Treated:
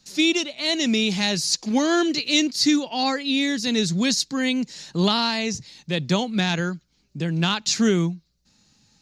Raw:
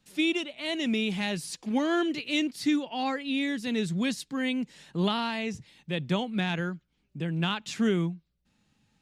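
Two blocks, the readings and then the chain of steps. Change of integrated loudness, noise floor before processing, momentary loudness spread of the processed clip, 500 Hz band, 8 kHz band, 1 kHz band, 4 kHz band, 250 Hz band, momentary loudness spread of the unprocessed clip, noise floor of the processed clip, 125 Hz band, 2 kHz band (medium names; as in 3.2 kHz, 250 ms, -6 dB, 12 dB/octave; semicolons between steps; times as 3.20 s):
+7.5 dB, -74 dBFS, 8 LU, +6.0 dB, +16.0 dB, +6.0 dB, +11.0 dB, +6.0 dB, 8 LU, -66 dBFS, +6.0 dB, +6.0 dB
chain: high-order bell 5.3 kHz +12.5 dB 1 oct; trim +6 dB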